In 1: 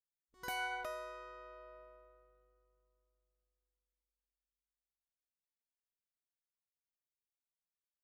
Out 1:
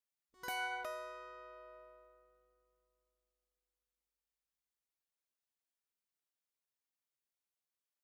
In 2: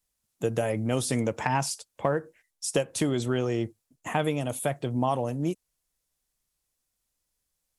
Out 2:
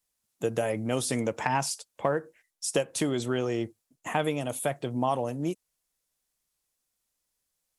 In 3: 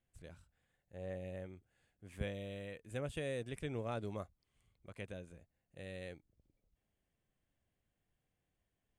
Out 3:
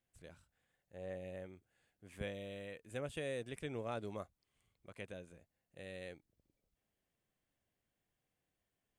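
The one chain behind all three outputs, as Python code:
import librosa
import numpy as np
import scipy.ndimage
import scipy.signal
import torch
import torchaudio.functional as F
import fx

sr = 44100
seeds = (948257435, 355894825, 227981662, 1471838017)

y = fx.low_shelf(x, sr, hz=130.0, db=-9.0)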